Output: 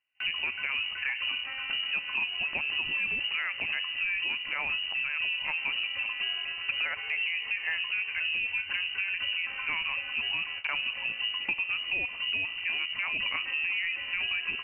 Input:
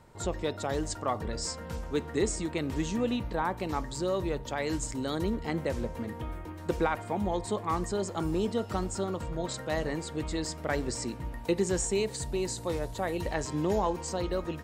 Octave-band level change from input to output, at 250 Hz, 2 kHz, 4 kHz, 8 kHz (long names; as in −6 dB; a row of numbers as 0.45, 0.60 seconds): below −20 dB, +14.0 dB, +12.5 dB, below −40 dB